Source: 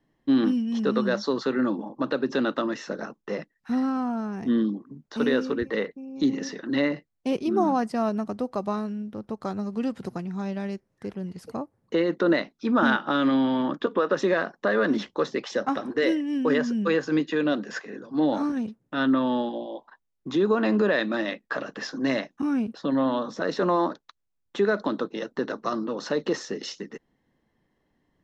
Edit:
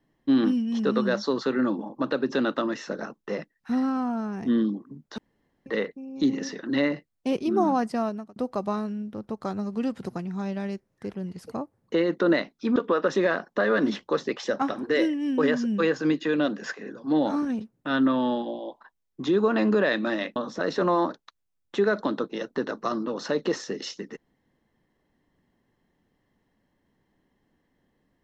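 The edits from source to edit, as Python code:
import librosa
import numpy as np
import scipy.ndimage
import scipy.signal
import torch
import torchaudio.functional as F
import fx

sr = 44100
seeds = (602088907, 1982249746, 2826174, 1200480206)

y = fx.edit(x, sr, fx.room_tone_fill(start_s=5.18, length_s=0.48),
    fx.fade_out_span(start_s=7.95, length_s=0.41),
    fx.cut(start_s=12.76, length_s=1.07),
    fx.cut(start_s=21.43, length_s=1.74), tone=tone)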